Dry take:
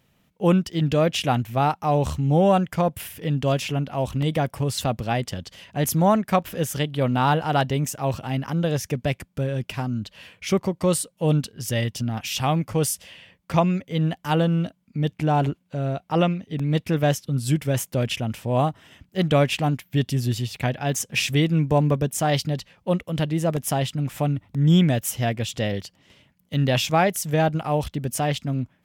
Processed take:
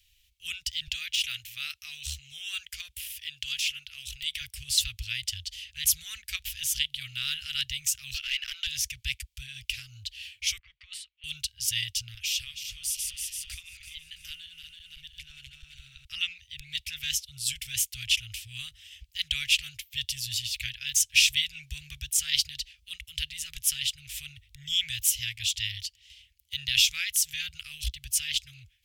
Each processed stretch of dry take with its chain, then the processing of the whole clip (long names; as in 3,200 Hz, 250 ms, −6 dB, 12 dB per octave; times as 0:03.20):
0:00.87–0:04.41: de-essing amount 65% + low shelf with overshoot 400 Hz −9.5 dB, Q 1.5
0:08.14–0:08.67: high-pass filter 740 Hz + parametric band 8,000 Hz −10.5 dB 0.73 octaves + mid-hump overdrive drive 19 dB, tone 3,100 Hz, clips at −15 dBFS
0:10.58–0:11.24: low-pass that shuts in the quiet parts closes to 1,700 Hz, open at −16 dBFS + compressor whose output falls as the input rises −22 dBFS, ratio −0.5 + three-way crossover with the lows and the highs turned down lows −18 dB, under 580 Hz, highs −24 dB, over 2,800 Hz
0:12.14–0:16.05: feedback delay that plays each chunk backwards 166 ms, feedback 66%, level −7.5 dB + downward compressor 3 to 1, threshold −31 dBFS
whole clip: inverse Chebyshev band-stop filter 180–960 Hz, stop band 60 dB; high-shelf EQ 7,000 Hz −4.5 dB; level +7 dB